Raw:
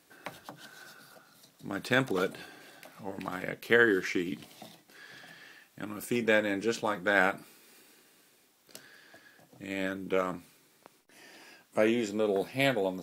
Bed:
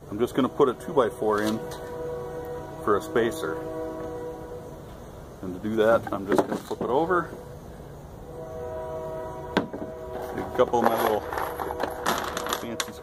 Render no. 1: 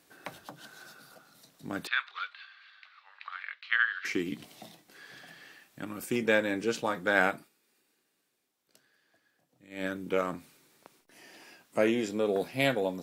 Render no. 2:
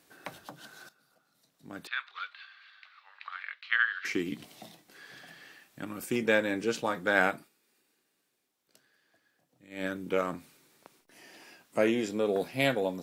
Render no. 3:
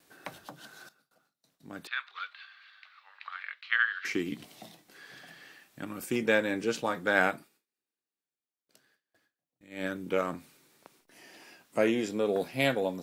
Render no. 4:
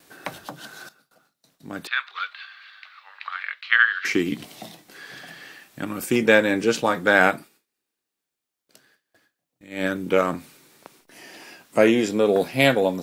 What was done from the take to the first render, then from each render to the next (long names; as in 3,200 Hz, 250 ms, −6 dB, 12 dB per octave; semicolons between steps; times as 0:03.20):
0:01.87–0:04.05: elliptic band-pass filter 1,200–4,200 Hz, stop band 70 dB; 0:07.34–0:09.86: duck −14.5 dB, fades 0.15 s
0:00.89–0:02.43: fade in quadratic, from −15.5 dB
noise gate with hold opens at −57 dBFS
level +9.5 dB; brickwall limiter −2 dBFS, peak gain reduction 3 dB